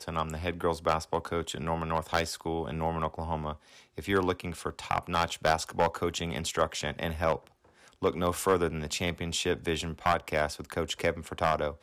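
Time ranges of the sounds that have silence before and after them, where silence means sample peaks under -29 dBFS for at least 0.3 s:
3.98–7.36 s

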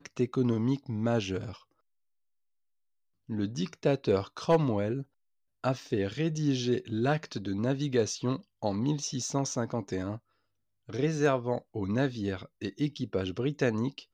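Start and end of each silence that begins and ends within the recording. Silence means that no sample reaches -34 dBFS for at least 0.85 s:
1.52–3.30 s

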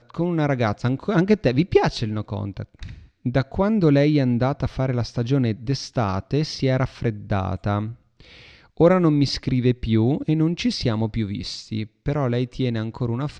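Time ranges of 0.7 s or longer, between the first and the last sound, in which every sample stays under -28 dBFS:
7.90–8.80 s

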